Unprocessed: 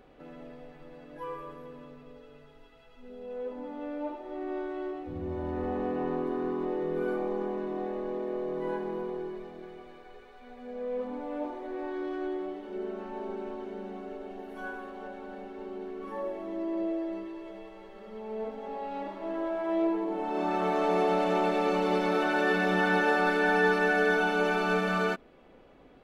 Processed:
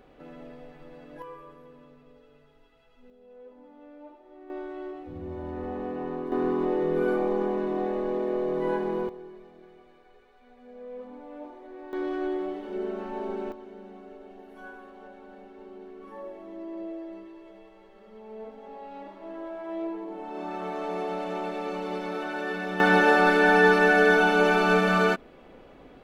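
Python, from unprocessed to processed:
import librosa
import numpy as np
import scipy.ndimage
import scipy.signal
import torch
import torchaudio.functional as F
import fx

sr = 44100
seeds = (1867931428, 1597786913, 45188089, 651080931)

y = fx.gain(x, sr, db=fx.steps((0.0, 1.5), (1.22, -5.0), (3.1, -12.0), (4.5, -2.0), (6.32, 5.5), (9.09, -7.0), (11.93, 4.0), (13.52, -5.5), (22.8, 6.0)))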